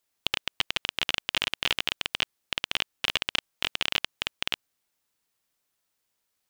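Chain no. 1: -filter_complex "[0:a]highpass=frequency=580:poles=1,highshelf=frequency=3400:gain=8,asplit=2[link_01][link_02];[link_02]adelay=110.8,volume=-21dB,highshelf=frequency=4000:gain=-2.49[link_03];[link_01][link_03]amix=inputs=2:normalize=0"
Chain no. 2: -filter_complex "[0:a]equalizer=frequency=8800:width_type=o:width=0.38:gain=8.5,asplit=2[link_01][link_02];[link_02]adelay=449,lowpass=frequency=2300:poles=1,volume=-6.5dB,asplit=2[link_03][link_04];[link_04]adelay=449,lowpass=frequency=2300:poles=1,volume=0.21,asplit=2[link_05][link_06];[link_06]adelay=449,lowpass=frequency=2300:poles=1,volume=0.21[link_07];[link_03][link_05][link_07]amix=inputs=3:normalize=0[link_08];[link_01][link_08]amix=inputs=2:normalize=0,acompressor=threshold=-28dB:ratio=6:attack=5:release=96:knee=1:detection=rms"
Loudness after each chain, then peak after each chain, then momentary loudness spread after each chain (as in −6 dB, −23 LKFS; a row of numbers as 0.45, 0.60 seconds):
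−26.0, −37.0 LKFS; −2.0, −11.0 dBFS; 5, 4 LU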